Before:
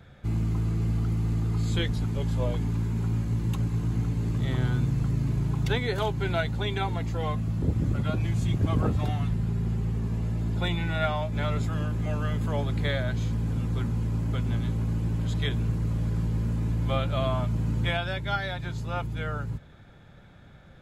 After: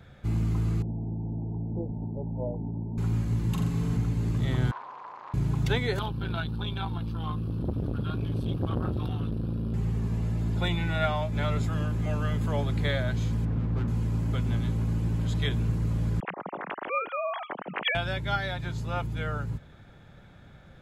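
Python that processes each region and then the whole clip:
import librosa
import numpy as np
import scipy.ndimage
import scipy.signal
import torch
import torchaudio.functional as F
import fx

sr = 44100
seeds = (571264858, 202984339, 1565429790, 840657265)

y = fx.chain(x, sr, fx.cheby_ripple(hz=920.0, ripple_db=3),
    fx.low_shelf(hz=110.0, db=-10.0), at=(0.82, 2.98))
y = fx.chain(y, sr, fx.comb(ms=4.6, depth=0.36),
    fx.room_flutter(wall_m=7.3, rt60_s=0.6), at=(3.51, 3.97))
y = fx.chain(y, sr, fx.overload_stage(gain_db=33.5),
    fx.highpass_res(hz=1000.0, q=7.5),
    fx.air_absorb(metres=230.0), at=(4.71, 5.34))
y = fx.chain(y, sr, fx.fixed_phaser(hz=2000.0, stages=6),
    fx.transformer_sat(knee_hz=390.0), at=(5.99, 9.74))
y = fx.chain(y, sr, fx.lowpass(hz=2200.0, slope=12),
    fx.running_max(window=9), at=(13.45, 13.88))
y = fx.chain(y, sr, fx.sine_speech(),
    fx.highpass(hz=1400.0, slope=6), at=(16.2, 17.95))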